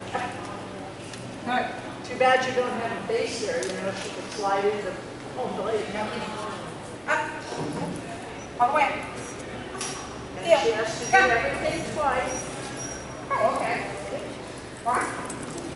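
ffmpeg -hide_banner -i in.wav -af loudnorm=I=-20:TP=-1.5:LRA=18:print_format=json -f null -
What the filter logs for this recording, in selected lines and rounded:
"input_i" : "-27.5",
"input_tp" : "-4.7",
"input_lra" : "4.5",
"input_thresh" : "-37.6",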